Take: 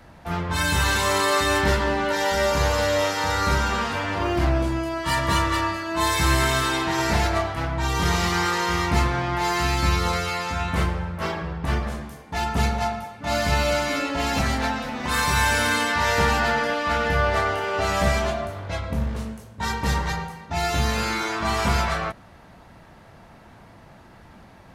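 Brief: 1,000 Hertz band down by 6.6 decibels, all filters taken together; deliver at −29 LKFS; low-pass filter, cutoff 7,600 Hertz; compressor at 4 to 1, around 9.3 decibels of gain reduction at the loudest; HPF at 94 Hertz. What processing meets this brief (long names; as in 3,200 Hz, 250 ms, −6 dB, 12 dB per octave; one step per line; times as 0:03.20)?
high-pass filter 94 Hz
low-pass filter 7,600 Hz
parametric band 1,000 Hz −8.5 dB
downward compressor 4 to 1, threshold −31 dBFS
level +4 dB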